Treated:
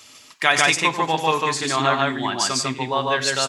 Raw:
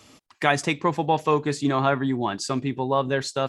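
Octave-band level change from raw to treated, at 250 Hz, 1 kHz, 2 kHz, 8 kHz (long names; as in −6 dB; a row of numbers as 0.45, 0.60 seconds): −3.0, +3.5, +8.5, +11.5 decibels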